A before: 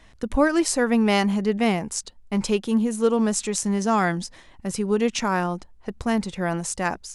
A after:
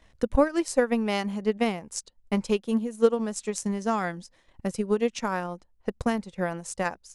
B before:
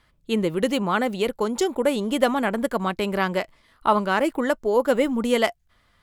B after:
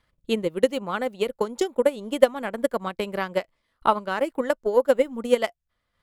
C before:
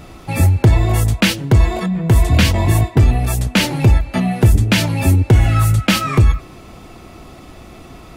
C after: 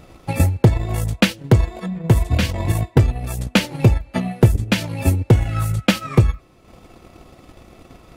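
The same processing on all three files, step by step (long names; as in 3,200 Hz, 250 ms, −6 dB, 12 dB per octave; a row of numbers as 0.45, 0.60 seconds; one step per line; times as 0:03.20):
parametric band 520 Hz +5.5 dB 0.31 octaves
transient designer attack +9 dB, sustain −7 dB
level −8 dB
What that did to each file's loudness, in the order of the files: −4.5, −1.5, −4.0 LU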